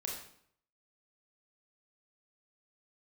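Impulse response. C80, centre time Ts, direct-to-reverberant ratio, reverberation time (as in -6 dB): 6.5 dB, 42 ms, -1.5 dB, 0.65 s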